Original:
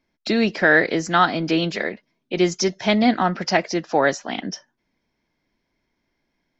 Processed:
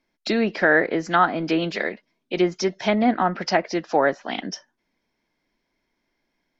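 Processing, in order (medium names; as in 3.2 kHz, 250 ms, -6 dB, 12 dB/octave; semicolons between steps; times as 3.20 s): peaking EQ 82 Hz -8.5 dB 2.1 oct; low-pass that closes with the level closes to 1.7 kHz, closed at -15.5 dBFS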